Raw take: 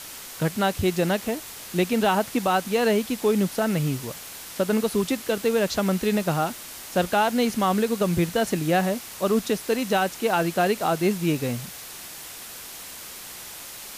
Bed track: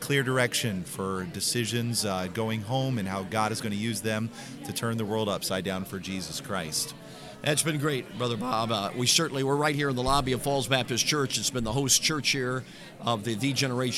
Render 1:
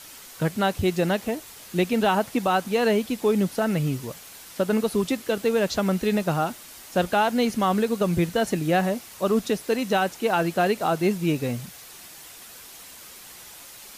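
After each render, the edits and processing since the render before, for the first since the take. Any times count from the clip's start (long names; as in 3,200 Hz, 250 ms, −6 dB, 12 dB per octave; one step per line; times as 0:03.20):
broadband denoise 6 dB, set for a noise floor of −40 dBFS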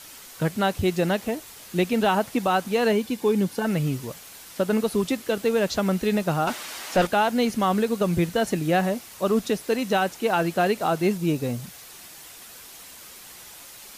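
0:02.92–0:03.65: notch comb filter 650 Hz
0:06.47–0:07.07: mid-hump overdrive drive 20 dB, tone 3,000 Hz, clips at −11.5 dBFS
0:11.17–0:11.63: parametric band 2,200 Hz −5 dB 1.1 octaves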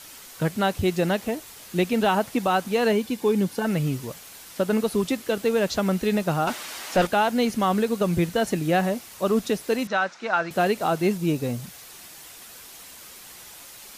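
0:09.87–0:10.51: loudspeaker in its box 290–5,600 Hz, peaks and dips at 300 Hz −9 dB, 430 Hz −10 dB, 780 Hz −3 dB, 1,400 Hz +6 dB, 3,000 Hz −7 dB, 4,500 Hz −3 dB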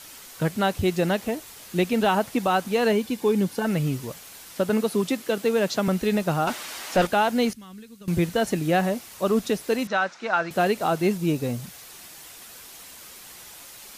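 0:04.69–0:05.88: high-pass filter 120 Hz 24 dB per octave
0:07.53–0:08.08: guitar amp tone stack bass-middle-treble 6-0-2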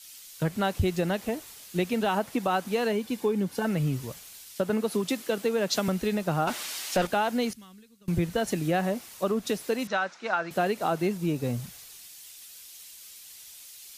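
downward compressor, threshold −23 dBFS, peak gain reduction 7.5 dB
multiband upward and downward expander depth 70%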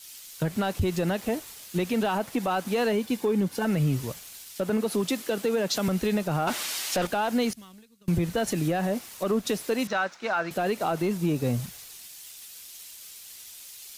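leveller curve on the samples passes 1
brickwall limiter −18 dBFS, peak gain reduction 5.5 dB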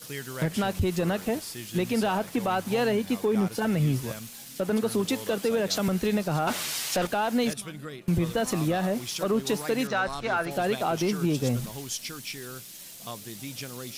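mix in bed track −12 dB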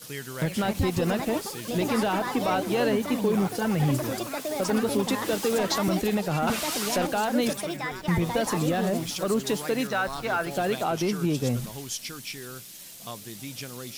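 delay with pitch and tempo change per echo 371 ms, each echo +5 semitones, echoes 3, each echo −6 dB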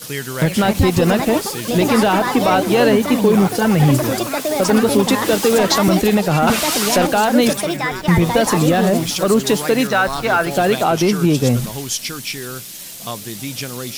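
level +11 dB
brickwall limiter −3 dBFS, peak gain reduction 1 dB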